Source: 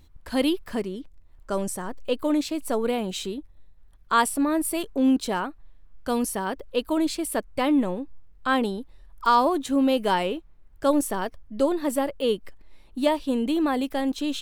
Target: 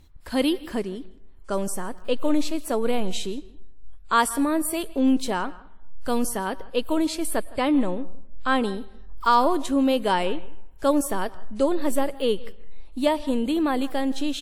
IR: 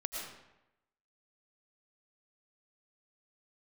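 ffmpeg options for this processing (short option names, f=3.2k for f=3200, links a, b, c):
-filter_complex "[0:a]asettb=1/sr,asplit=3[a][b][c];[a]atrim=end=7.464[d];[b]atrim=start=7.46:end=8.73,asetpts=PTS-STARTPTS,afade=t=in:d=0.004:c=qsin,afade=t=out:st=1.266:d=0.004:c=qsin,lowpass=f=12k:w=0.5412,lowpass=f=12k:w=1.3066[e];[c]atrim=start=8.726[f];[d][e]acrossfade=d=0.004:c1=hsin:c2=qsin[g];[g][f]acrossfade=d=0.004:c1=qsin:c2=hsin,asplit=2[h][i];[i]adelay=163.3,volume=-21dB,highshelf=f=4k:g=-3.67[j];[h][j]amix=inputs=2:normalize=0,asplit=2[k][l];[l]asubboost=boost=12:cutoff=78[m];[1:a]atrim=start_sample=2205,asetrate=43218,aresample=44100[n];[m][n]afir=irnorm=-1:irlink=0,volume=-20.5dB[o];[k][o]amix=inputs=2:normalize=0" -ar 48000 -c:a wmav2 -b:a 64k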